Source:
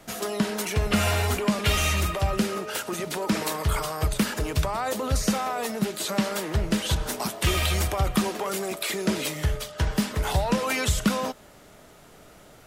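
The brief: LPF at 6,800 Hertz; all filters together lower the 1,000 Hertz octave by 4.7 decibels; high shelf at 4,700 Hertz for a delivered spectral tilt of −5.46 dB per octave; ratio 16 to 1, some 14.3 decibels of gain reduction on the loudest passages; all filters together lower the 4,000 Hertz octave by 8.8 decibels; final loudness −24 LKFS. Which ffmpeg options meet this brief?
ffmpeg -i in.wav -af "lowpass=6800,equalizer=frequency=1000:width_type=o:gain=-5.5,equalizer=frequency=4000:width_type=o:gain=-8.5,highshelf=frequency=4700:gain=-5.5,acompressor=threshold=-33dB:ratio=16,volume=14dB" out.wav

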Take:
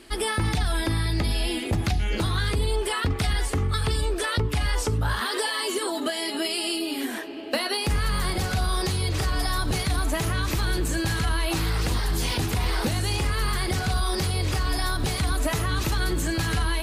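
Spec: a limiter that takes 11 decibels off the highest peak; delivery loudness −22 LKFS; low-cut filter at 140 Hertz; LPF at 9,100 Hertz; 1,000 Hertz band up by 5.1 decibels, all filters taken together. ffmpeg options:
ffmpeg -i in.wav -af "highpass=140,lowpass=9100,equalizer=frequency=1000:width_type=o:gain=6.5,volume=8dB,alimiter=limit=-14dB:level=0:latency=1" out.wav

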